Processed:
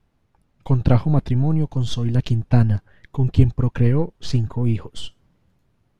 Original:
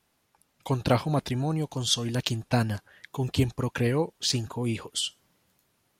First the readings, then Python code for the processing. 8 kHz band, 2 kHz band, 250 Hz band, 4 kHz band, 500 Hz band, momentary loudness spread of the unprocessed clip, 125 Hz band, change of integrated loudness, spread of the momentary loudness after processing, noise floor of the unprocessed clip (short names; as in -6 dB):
under -10 dB, -2.5 dB, +7.0 dB, -6.5 dB, +2.0 dB, 7 LU, +11.5 dB, +7.5 dB, 9 LU, -72 dBFS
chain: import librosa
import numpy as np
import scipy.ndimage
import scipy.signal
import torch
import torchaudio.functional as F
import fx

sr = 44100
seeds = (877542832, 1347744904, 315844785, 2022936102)

y = np.where(x < 0.0, 10.0 ** (-3.0 / 20.0) * x, x)
y = fx.riaa(y, sr, side='playback')
y = y * librosa.db_to_amplitude(1.0)